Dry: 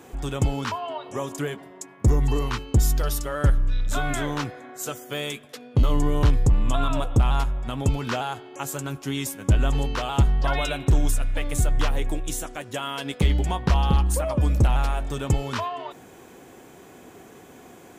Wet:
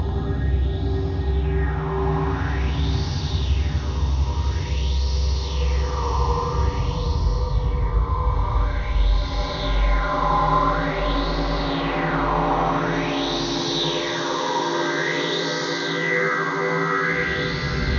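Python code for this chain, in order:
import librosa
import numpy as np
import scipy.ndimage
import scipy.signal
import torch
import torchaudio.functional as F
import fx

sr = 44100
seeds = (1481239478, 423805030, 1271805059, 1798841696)

p1 = fx.partial_stretch(x, sr, pct=80)
p2 = fx.paulstretch(p1, sr, seeds[0], factor=5.2, window_s=1.0, from_s=2.06)
p3 = p2 + fx.echo_bbd(p2, sr, ms=90, stages=1024, feedback_pct=61, wet_db=-5, dry=0)
p4 = fx.rider(p3, sr, range_db=10, speed_s=0.5)
p5 = fx.high_shelf(p4, sr, hz=3800.0, db=-6.0)
y = fx.bell_lfo(p5, sr, hz=0.48, low_hz=960.0, high_hz=4800.0, db=11)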